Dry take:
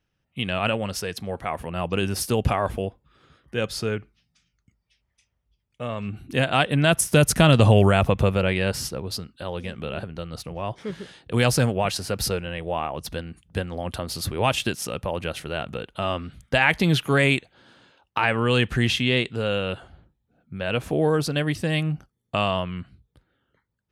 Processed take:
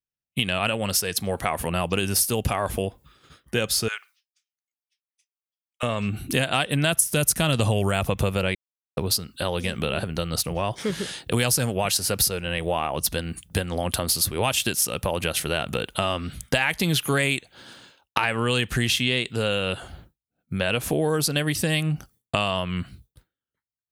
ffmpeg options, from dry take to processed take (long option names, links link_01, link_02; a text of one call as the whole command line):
ffmpeg -i in.wav -filter_complex "[0:a]asettb=1/sr,asplit=3[link_01][link_02][link_03];[link_01]atrim=end=3.884[link_04];[link_02]atrim=start=3.88:end=5.83,asetpts=PTS-STARTPTS,afade=type=in:duration=0.004:curve=qsin,afade=type=out:start_time=1.946:duration=0.004:curve=qsin,highpass=frequency=1000:width=0.5412,highpass=frequency=1000:width=1.3066[link_05];[link_03]atrim=start=5.826[link_06];[link_04][link_05]acrossfade=duration=0.004:curve1=hsin:curve2=qsin[link_07];[link_07][link_06]acrossfade=duration=0.004:curve1=qsin:curve2=hsin,asplit=3[link_08][link_09][link_10];[link_08]atrim=end=8.55,asetpts=PTS-STARTPTS,afade=type=out:start_time=8.546:duration=0.004:curve=hsin[link_11];[link_09]atrim=start=8.55:end=8.97,asetpts=PTS-STARTPTS,volume=0[link_12];[link_10]atrim=start=8.97,asetpts=PTS-STARTPTS,afade=type=in:duration=0.004:curve=hsin[link_13];[link_11][link_12][link_13]concat=n=3:v=0:a=1,agate=range=-33dB:threshold=-50dB:ratio=3:detection=peak,aemphasis=mode=production:type=75kf,acompressor=threshold=-29dB:ratio=4,volume=7.5dB" out.wav